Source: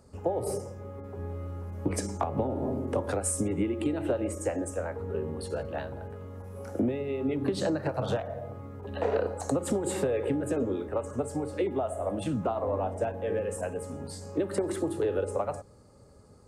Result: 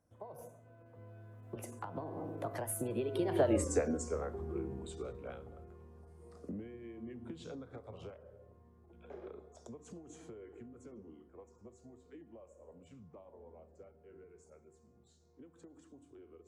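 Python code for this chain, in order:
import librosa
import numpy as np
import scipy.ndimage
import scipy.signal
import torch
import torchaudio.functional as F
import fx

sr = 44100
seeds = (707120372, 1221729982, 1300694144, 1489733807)

p1 = fx.doppler_pass(x, sr, speed_mps=60, closest_m=13.0, pass_at_s=3.56)
p2 = fx.rider(p1, sr, range_db=4, speed_s=0.5)
p3 = p1 + (p2 * 10.0 ** (1.5 / 20.0))
y = p3 * 10.0 ** (-3.5 / 20.0)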